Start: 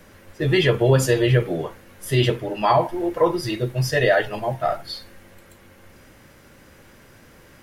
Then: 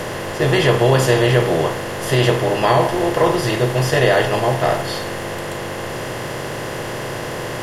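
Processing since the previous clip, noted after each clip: per-bin compression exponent 0.4; gain -1.5 dB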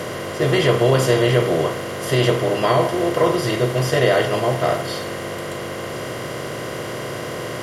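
notch comb 860 Hz; gain -1 dB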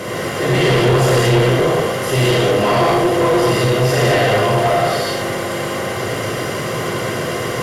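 non-linear reverb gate 0.26 s flat, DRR -7 dB; soft clip -9 dBFS, distortion -11 dB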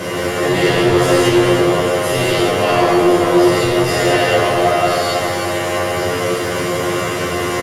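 in parallel at +2.5 dB: limiter -18.5 dBFS, peak gain reduction 9.5 dB; on the sum: resonator 89 Hz, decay 0.24 s, harmonics all, mix 100%; echo 0.32 s -8.5 dB; gain +5 dB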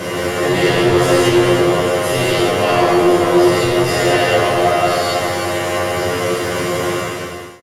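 ending faded out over 0.74 s

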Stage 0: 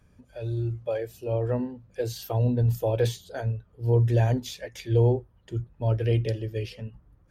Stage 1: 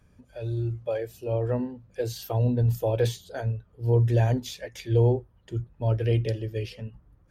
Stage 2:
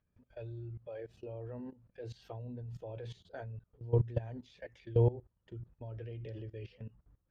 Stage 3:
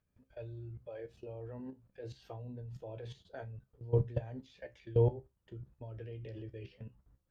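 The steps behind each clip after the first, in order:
nothing audible
LPF 3200 Hz 12 dB/oct; level quantiser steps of 19 dB; gain -5 dB
resonator 66 Hz, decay 0.19 s, harmonics all, mix 70%; gain +3.5 dB

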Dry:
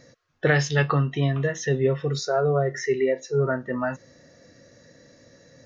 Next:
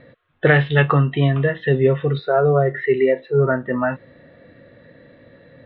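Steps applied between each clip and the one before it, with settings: steep low-pass 3700 Hz 72 dB/oct; gain +6 dB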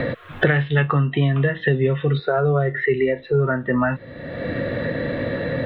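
dynamic EQ 590 Hz, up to -5 dB, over -26 dBFS, Q 0.73; three-band squash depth 100%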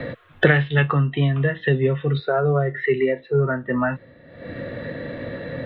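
three-band expander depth 100%; gain -1 dB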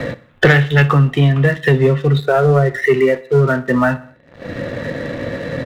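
sample leveller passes 2; feedback echo 63 ms, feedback 51%, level -19 dB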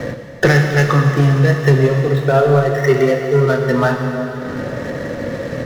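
median filter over 15 samples; plate-style reverb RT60 4.1 s, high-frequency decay 1×, DRR 2.5 dB; gain -1 dB

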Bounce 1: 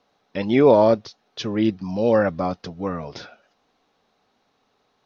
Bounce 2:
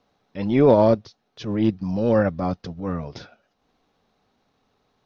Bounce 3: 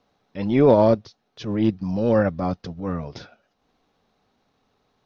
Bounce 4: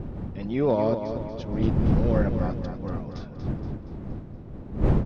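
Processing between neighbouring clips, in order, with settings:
low shelf 210 Hz +11 dB; transient shaper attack -9 dB, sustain -5 dB; gain -2 dB
nothing audible
wind noise 190 Hz -20 dBFS; on a send: feedback echo 0.236 s, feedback 52%, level -8 dB; on the sum: gain -8 dB

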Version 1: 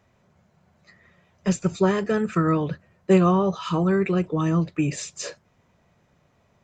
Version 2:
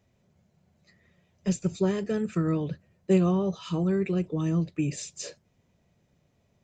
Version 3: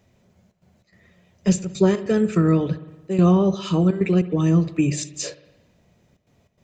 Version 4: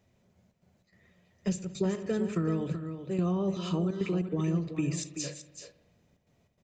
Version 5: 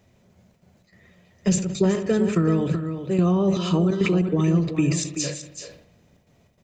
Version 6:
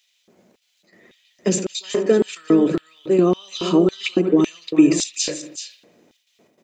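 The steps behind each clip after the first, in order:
bell 1200 Hz -10.5 dB 1.6 oct; gain -3.5 dB
notches 50/100/150 Hz; step gate "xxxxx.xx.xx" 146 bpm -12 dB; spring tank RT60 1.1 s, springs 56 ms, chirp 30 ms, DRR 14.5 dB; gain +8.5 dB
compressor 4:1, threshold -18 dBFS, peak gain reduction 6.5 dB; on a send: echo 0.38 s -9.5 dB; on the sum: gain -8 dB
sustainer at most 89 dB/s; gain +9 dB
LFO high-pass square 1.8 Hz 310–3300 Hz; gain +3 dB

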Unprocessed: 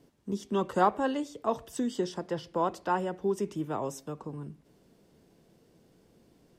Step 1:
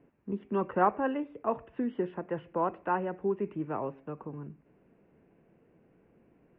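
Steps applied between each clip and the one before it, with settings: Chebyshev low-pass 2600 Hz, order 5; low shelf 130 Hz -4.5 dB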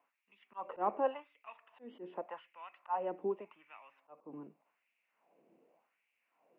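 fifteen-band EQ 100 Hz -7 dB, 400 Hz -11 dB, 1600 Hz -11 dB; LFO high-pass sine 0.86 Hz 330–2400 Hz; auto swell 0.153 s; gain -1.5 dB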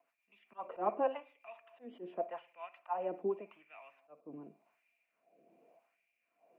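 rotary speaker horn 7.5 Hz, later 1 Hz, at 3.04; small resonant body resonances 680/2400 Hz, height 14 dB, ringing for 70 ms; reverb, pre-delay 53 ms, DRR 18.5 dB; gain +1.5 dB

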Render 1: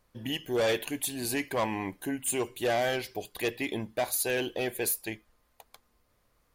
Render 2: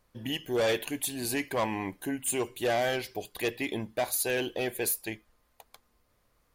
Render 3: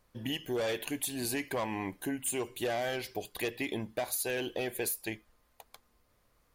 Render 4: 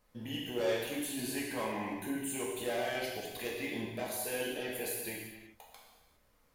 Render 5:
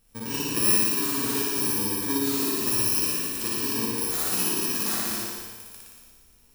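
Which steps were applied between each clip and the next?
nothing audible
compressor, threshold -30 dBFS, peak gain reduction 6.5 dB
limiter -28.5 dBFS, peak gain reduction 7 dB; non-linear reverb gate 0.43 s falling, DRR -4.5 dB; gain -4.5 dB
FFT order left unsorted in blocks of 64 samples; flutter echo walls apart 10 m, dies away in 1.4 s; gain +7.5 dB

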